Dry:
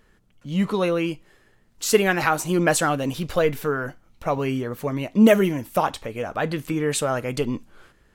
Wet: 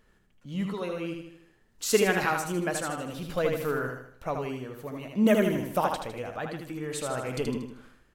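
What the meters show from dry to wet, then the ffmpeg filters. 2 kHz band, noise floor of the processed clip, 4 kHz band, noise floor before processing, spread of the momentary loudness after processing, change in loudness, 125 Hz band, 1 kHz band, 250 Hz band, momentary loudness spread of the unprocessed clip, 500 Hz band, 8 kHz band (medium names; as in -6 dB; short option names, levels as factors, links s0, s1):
-6.0 dB, -64 dBFS, -6.0 dB, -60 dBFS, 14 LU, -6.5 dB, -7.5 dB, -6.0 dB, -7.0 dB, 11 LU, -6.0 dB, -6.5 dB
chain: -af "aecho=1:1:78|156|234|312|390|468:0.596|0.268|0.121|0.0543|0.0244|0.011,tremolo=f=0.52:d=0.55,volume=0.531"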